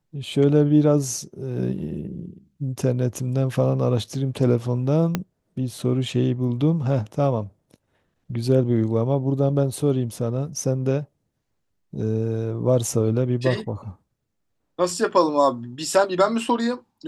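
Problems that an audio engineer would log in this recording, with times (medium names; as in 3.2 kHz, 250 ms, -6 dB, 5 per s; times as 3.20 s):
5.15 s: pop -8 dBFS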